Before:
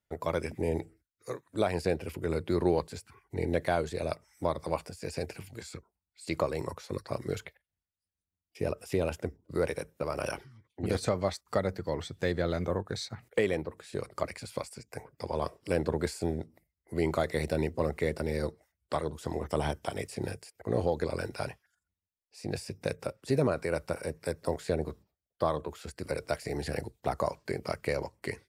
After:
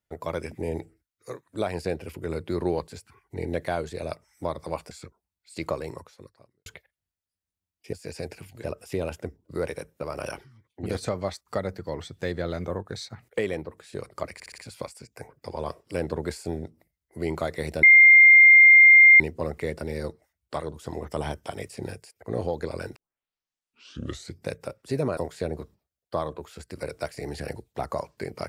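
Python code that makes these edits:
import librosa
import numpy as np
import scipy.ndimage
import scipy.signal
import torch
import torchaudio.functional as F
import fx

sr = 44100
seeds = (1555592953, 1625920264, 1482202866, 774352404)

y = fx.edit(x, sr, fx.move(start_s=4.91, length_s=0.71, to_s=8.64),
    fx.fade_out_span(start_s=6.51, length_s=0.86, curve='qua'),
    fx.stutter(start_s=14.34, slice_s=0.06, count=5),
    fx.insert_tone(at_s=17.59, length_s=1.37, hz=2110.0, db=-9.0),
    fx.tape_start(start_s=21.35, length_s=1.53),
    fx.cut(start_s=23.56, length_s=0.89), tone=tone)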